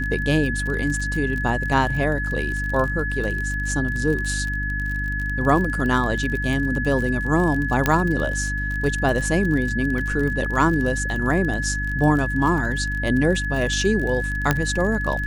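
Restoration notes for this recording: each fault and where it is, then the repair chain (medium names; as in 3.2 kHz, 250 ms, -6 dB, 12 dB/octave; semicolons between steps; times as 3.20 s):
crackle 37 per s -26 dBFS
hum 50 Hz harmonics 6 -27 dBFS
whine 1.7 kHz -26 dBFS
7.86 s: pop -4 dBFS
14.51 s: pop -4 dBFS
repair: de-click; de-hum 50 Hz, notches 6; band-stop 1.7 kHz, Q 30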